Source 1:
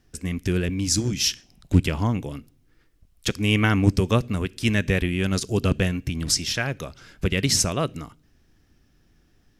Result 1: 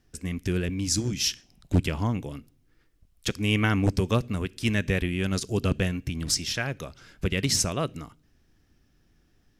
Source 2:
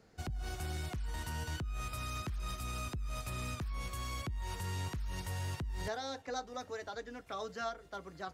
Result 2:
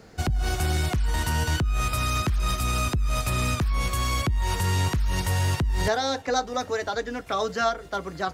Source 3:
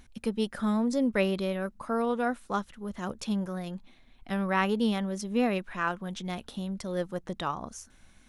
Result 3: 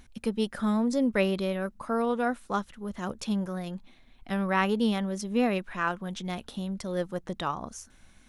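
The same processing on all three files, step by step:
wave folding −8.5 dBFS
normalise the peak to −12 dBFS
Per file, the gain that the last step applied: −3.5, +14.5, +1.0 decibels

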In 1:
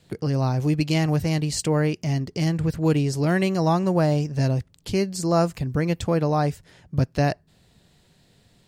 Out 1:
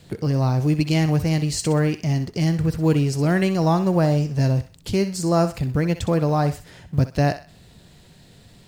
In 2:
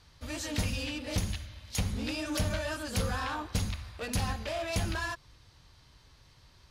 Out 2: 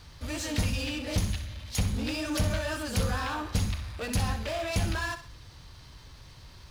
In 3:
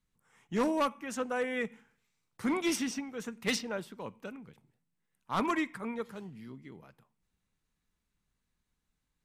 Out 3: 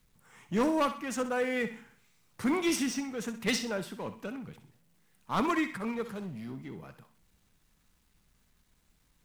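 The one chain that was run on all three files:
mu-law and A-law mismatch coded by mu
low-shelf EQ 230 Hz +3 dB
on a send: feedback echo with a high-pass in the loop 63 ms, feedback 36%, high-pass 640 Hz, level −10.5 dB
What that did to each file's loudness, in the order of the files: +2.0, +3.0, +1.5 LU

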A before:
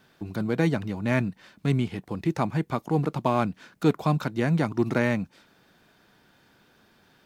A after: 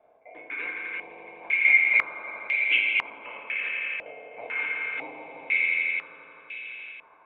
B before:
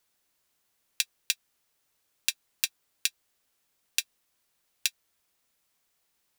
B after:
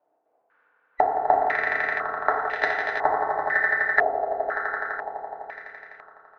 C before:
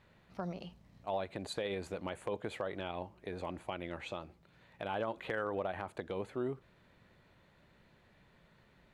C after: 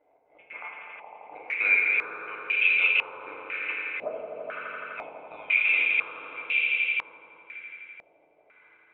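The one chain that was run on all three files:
neighbouring bands swapped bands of 2,000 Hz
high-pass filter 440 Hz 12 dB per octave
downward compressor 16 to 1, threshold −31 dBFS
leveller curve on the samples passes 1
gate pattern "xx.xx.xx...x...x" 178 BPM −24 dB
high-frequency loss of the air 400 metres
on a send: echo that builds up and dies away 84 ms, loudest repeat 5, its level −7.5 dB
on the sum: feedback delay network reverb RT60 1.8 s, low-frequency decay 0.95×, high-frequency decay 0.4×, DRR −2 dB
low-pass on a step sequencer 2 Hz 670–2,700 Hz
loudness normalisation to −24 LKFS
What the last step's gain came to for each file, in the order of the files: +5.0, +13.5, +5.5 decibels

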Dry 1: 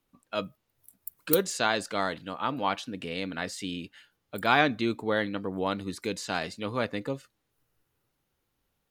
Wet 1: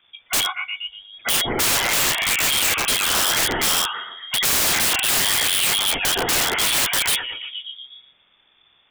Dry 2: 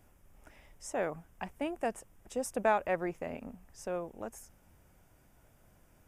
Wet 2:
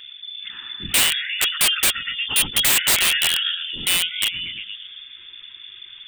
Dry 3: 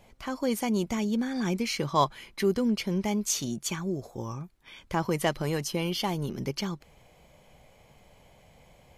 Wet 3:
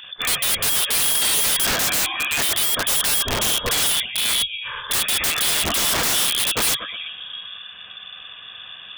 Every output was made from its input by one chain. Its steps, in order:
hearing-aid frequency compression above 1,300 Hz 1.5 to 1
gate on every frequency bin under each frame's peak −30 dB strong
parametric band 420 Hz −14.5 dB 0.4 octaves
downward compressor 2.5 to 1, threshold −32 dBFS
echo through a band-pass that steps 118 ms, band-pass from 2,500 Hz, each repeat −0.7 octaves, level −3 dB
soft clipping −22 dBFS
voice inversion scrambler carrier 3,500 Hz
wrap-around overflow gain 33 dB
loudness normalisation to −18 LKFS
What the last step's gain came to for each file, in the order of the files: +19.0, +21.5, +18.0 decibels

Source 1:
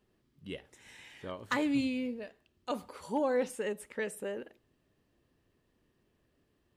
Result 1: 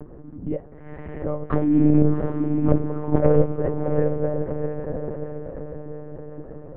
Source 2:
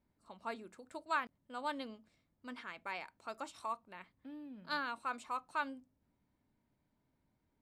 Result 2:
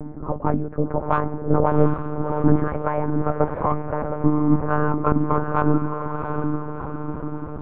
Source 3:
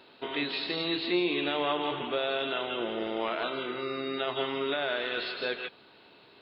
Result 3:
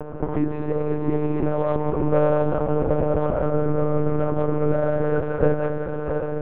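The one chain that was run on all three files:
loose part that buzzes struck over −37 dBFS, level −23 dBFS
low-pass filter 1,300 Hz 24 dB per octave
upward compression, threshold −46 dBFS
harmonic generator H 2 −10 dB, 4 −30 dB, 5 −20 dB, 7 −32 dB, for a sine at −19 dBFS
downward compressor 2 to 1, threshold −43 dBFS
hollow resonant body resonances 250/520 Hz, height 15 dB, ringing for 60 ms
on a send: feedback delay with all-pass diffusion 717 ms, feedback 52%, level −5 dB
on the sum: one-pitch LPC vocoder at 8 kHz 150 Hz
loudness normalisation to −23 LKFS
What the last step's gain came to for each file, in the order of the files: +10.0, +18.5, +11.0 decibels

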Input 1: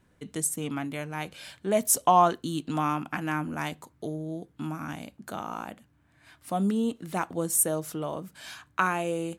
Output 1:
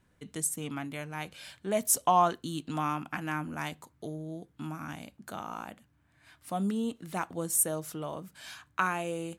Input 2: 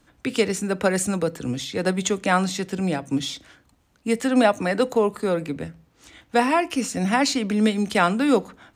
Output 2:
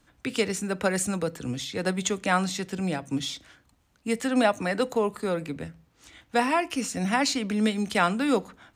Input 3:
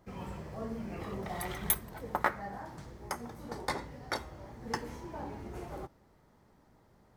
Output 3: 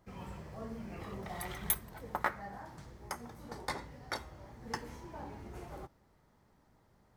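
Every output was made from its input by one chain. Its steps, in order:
parametric band 370 Hz −3 dB 2.2 octaves
level −2.5 dB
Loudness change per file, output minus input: −3.5, −4.0, −3.5 LU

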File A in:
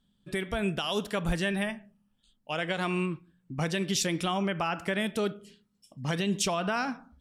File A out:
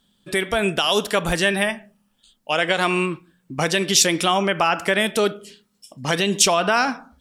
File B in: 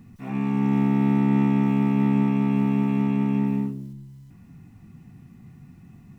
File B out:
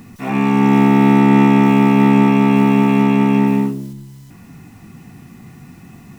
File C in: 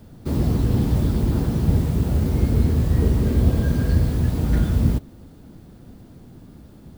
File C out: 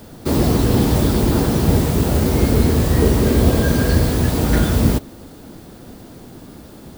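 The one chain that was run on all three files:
bass and treble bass −10 dB, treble +3 dB
normalise the peak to −1.5 dBFS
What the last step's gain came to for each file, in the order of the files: +11.5, +15.0, +11.5 decibels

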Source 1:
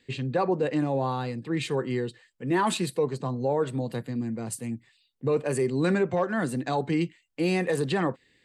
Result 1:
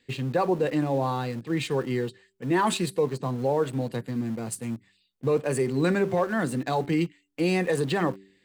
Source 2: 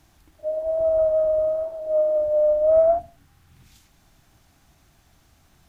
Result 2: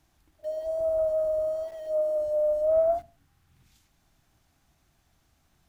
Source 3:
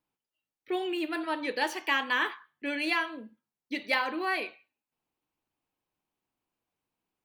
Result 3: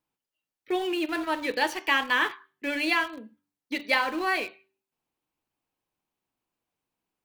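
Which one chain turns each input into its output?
hum removal 96.78 Hz, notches 4
in parallel at −7.5 dB: centre clipping without the shift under −34 dBFS
on the sum: loudness normalisation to −27 LKFS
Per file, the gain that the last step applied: −2.0, −9.0, +0.5 decibels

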